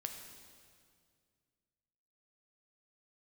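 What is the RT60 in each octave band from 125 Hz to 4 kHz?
2.7, 2.5, 2.2, 2.0, 1.9, 1.9 seconds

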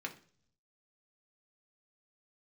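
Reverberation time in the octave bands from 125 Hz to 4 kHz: 1.1, 0.75, 0.55, 0.40, 0.45, 0.55 seconds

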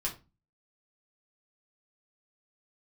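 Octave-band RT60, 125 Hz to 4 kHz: 0.50, 0.45, 0.30, 0.25, 0.25, 0.20 seconds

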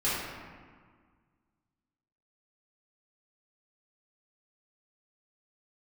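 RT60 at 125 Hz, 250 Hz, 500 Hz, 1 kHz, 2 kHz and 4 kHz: 2.1, 2.1, 1.6, 1.8, 1.5, 1.0 seconds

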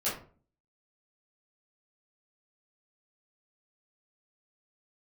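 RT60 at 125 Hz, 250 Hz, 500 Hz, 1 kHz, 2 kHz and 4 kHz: 0.60, 0.60, 0.45, 0.40, 0.30, 0.25 seconds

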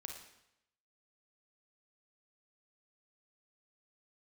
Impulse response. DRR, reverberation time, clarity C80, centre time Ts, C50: 2.0 dB, 0.85 s, 7.5 dB, 34 ms, 4.0 dB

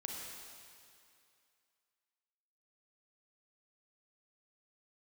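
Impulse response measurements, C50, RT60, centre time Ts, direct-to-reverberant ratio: −0.5 dB, 2.5 s, 120 ms, −1.0 dB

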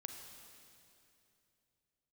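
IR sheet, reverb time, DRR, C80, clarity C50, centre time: 2.8 s, 4.0 dB, 5.5 dB, 4.5 dB, 64 ms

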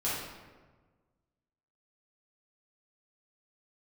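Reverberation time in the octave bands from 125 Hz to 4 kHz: 1.8, 1.6, 1.5, 1.3, 1.1, 0.80 seconds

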